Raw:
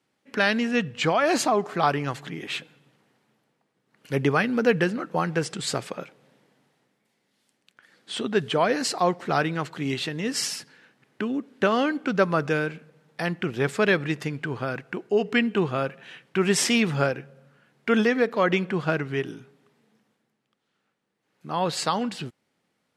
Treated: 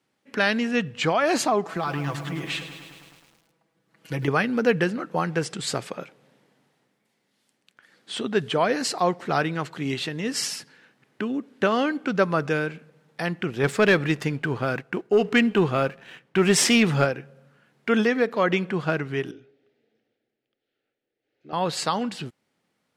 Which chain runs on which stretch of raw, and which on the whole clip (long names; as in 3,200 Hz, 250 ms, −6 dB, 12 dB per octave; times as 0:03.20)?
0:01.65–0:04.28: comb filter 6.1 ms, depth 82% + downward compressor 4 to 1, threshold −24 dBFS + feedback echo at a low word length 105 ms, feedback 80%, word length 8 bits, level −11 dB
0:13.63–0:17.05: leveller curve on the samples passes 1 + one half of a high-frequency compander decoder only
0:19.31–0:21.53: high-frequency loss of the air 200 metres + phaser with its sweep stopped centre 430 Hz, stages 4
whole clip: no processing